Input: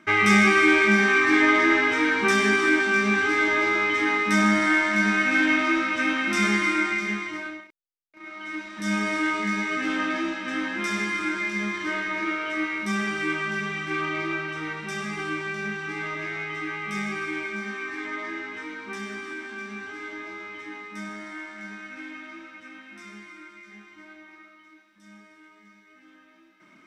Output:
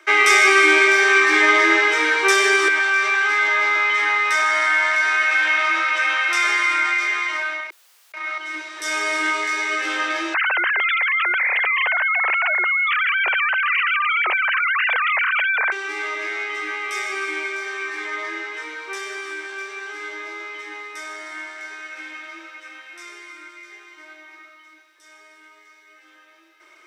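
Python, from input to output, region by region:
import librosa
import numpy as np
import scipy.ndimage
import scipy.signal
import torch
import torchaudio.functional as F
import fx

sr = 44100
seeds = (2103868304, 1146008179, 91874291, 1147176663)

y = fx.chain(x, sr, fx.highpass(hz=780.0, slope=12),
    fx.high_shelf(hz=3900.0, db=-10.5),
    fx.env_flatten(amount_pct=50), at=(2.68, 8.38))
y = fx.chain(y, sr, fx.sine_speech(),
    fx.ladder_highpass(hz=490.0, resonance_pct=20),
    fx.env_flatten(amount_pct=100), at=(10.34, 15.72))
y = scipy.signal.sosfilt(scipy.signal.butter(12, 340.0, 'highpass', fs=sr, output='sos'), y)
y = fx.high_shelf(y, sr, hz=3500.0, db=7.0)
y = F.gain(torch.from_numpy(y), 4.0).numpy()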